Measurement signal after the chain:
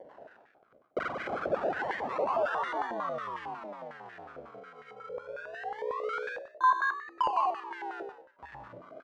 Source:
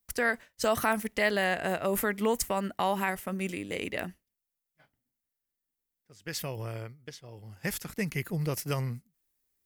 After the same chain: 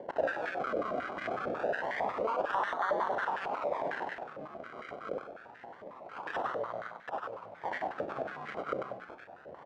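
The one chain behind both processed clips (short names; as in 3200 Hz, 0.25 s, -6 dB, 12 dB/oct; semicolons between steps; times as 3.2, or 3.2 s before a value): upward compressor, threshold -27 dBFS; echoes that change speed 0.103 s, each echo -4 st, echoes 2, each echo -6 dB; tilt shelf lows -6.5 dB; doubler 34 ms -13 dB; gate with hold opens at -39 dBFS; decimation with a swept rate 34×, swing 100% 0.26 Hz; air absorption 60 m; frequency-shifting echo 96 ms, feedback 33%, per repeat +62 Hz, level -3.5 dB; limiter -20 dBFS; stepped band-pass 11 Hz 550–1800 Hz; gain +6.5 dB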